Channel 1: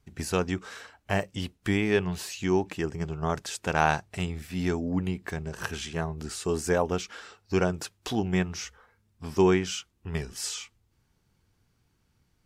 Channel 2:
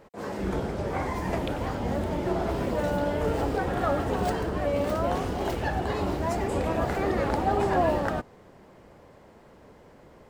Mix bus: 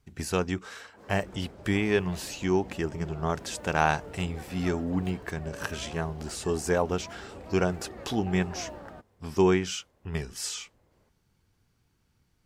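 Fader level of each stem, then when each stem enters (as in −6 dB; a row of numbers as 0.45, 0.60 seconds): −0.5, −17.0 decibels; 0.00, 0.80 seconds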